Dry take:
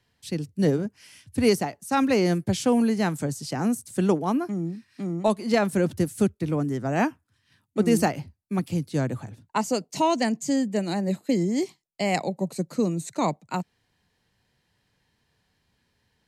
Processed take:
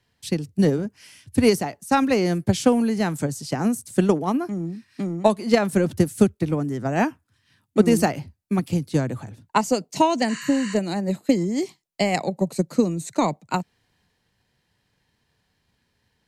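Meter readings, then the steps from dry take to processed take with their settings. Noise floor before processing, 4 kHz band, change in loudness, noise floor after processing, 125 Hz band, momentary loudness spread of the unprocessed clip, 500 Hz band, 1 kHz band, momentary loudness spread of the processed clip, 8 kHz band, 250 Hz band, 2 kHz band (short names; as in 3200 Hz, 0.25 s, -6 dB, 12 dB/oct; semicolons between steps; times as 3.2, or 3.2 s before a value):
-72 dBFS, +2.5 dB, +3.0 dB, -72 dBFS, +2.5 dB, 10 LU, +3.0 dB, +3.0 dB, 9 LU, +2.0 dB, +3.0 dB, +2.5 dB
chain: transient shaper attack +7 dB, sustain +3 dB; spectral repair 10.31–10.72, 990–11000 Hz after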